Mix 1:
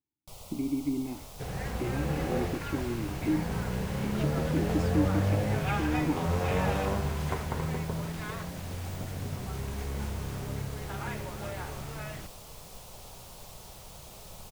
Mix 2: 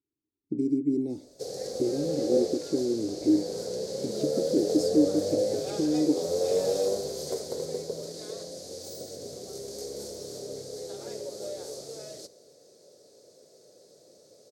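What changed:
first sound: muted
second sound: add meter weighting curve A
master: add drawn EQ curve 210 Hz 0 dB, 510 Hz +14 dB, 950 Hz −17 dB, 2,800 Hz −17 dB, 4,400 Hz +12 dB

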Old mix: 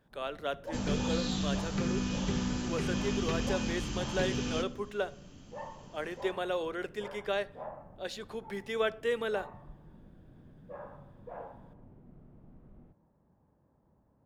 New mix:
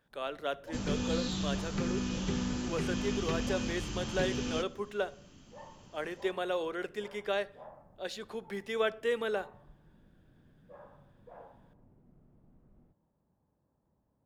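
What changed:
first sound −7.5 dB
second sound: send −7.5 dB

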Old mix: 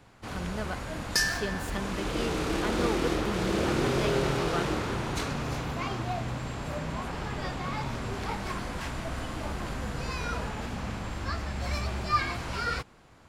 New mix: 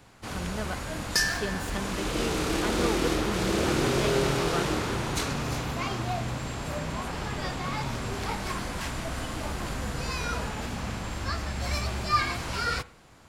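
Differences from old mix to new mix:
first sound: add high-shelf EQ 4,300 Hz +7 dB
reverb: on

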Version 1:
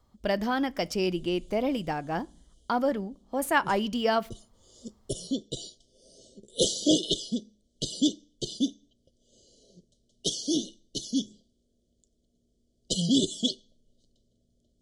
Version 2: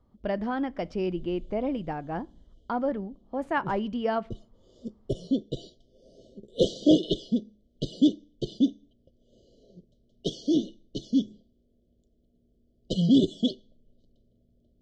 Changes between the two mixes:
background +5.5 dB
master: add head-to-tape spacing loss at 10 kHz 33 dB

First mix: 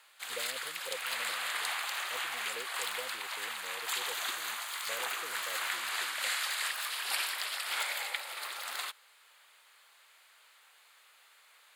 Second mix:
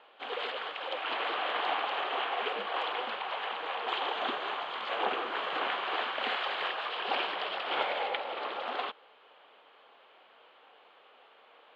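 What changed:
background: remove high-pass filter 1,200 Hz 12 dB per octave
master: add loudspeaker in its box 380–3,100 Hz, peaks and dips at 470 Hz +4 dB, 760 Hz +6 dB, 1,100 Hz +3 dB, 2,000 Hz −4 dB, 3,100 Hz +7 dB

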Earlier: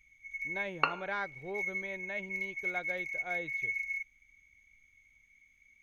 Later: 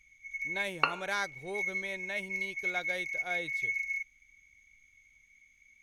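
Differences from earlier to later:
speech: remove high-frequency loss of the air 260 metres
master: add parametric band 6,000 Hz +6.5 dB 1.8 octaves

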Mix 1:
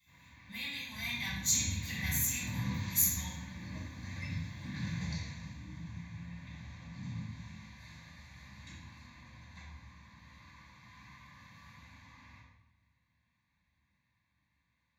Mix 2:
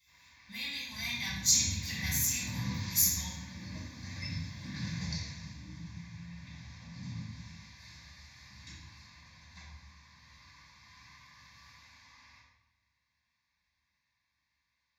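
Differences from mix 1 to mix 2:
first sound: add parametric band 160 Hz −13 dB 3 octaves
master: add parametric band 5,200 Hz +14.5 dB 0.37 octaves

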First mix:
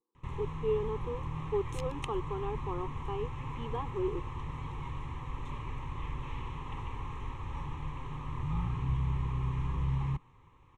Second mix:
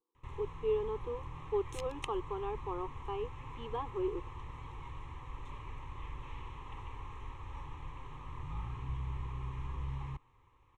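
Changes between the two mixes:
first sound −5.0 dB
master: add parametric band 180 Hz −11 dB 0.85 octaves

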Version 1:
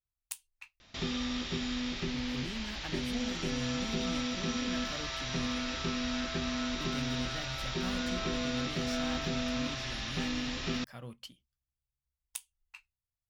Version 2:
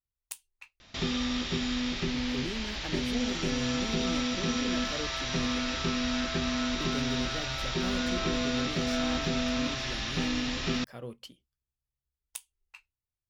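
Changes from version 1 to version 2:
speech: add parametric band 420 Hz +11 dB 1 octave
background +4.0 dB

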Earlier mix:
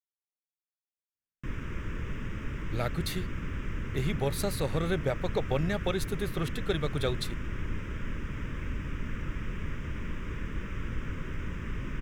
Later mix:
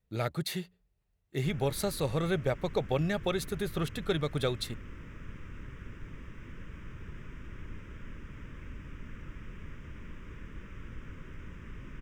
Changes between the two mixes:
speech: entry −2.60 s
background −9.5 dB

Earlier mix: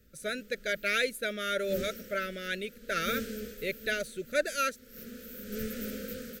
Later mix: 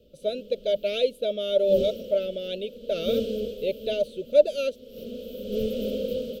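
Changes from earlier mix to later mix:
background +5.0 dB
master: add drawn EQ curve 170 Hz 0 dB, 350 Hz +3 dB, 600 Hz +13 dB, 1,800 Hz −28 dB, 3,000 Hz +7 dB, 6,700 Hz −13 dB

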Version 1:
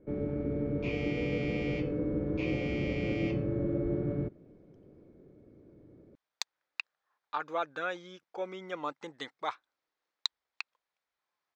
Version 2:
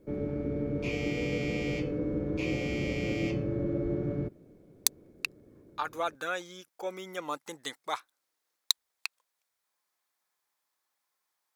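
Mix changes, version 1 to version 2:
speech: entry −1.55 s
master: remove high-frequency loss of the air 180 metres

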